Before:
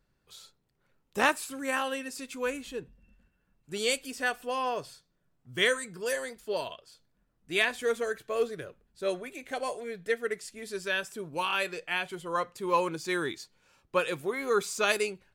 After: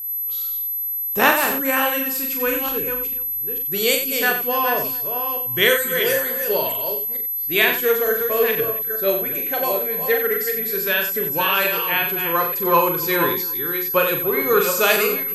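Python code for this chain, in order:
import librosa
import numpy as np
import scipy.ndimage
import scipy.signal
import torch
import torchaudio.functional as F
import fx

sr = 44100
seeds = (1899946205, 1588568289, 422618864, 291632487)

y = fx.reverse_delay(x, sr, ms=448, wet_db=-7)
y = y + 10.0 ** (-36.0 / 20.0) * np.sin(2.0 * np.pi * 12000.0 * np.arange(len(y)) / sr)
y = fx.echo_multitap(y, sr, ms=(41, 91, 278), db=(-5.5, -8.5, -19.5))
y = y * 10.0 ** (8.0 / 20.0)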